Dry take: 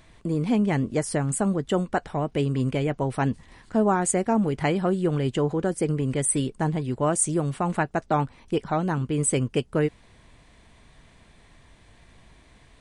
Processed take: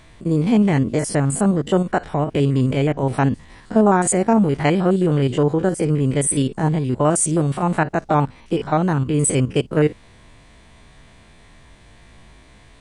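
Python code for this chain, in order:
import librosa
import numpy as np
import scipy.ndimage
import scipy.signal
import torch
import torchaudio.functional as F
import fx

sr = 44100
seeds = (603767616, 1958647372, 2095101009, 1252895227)

y = fx.spec_steps(x, sr, hold_ms=50)
y = F.gain(torch.from_numpy(y), 7.5).numpy()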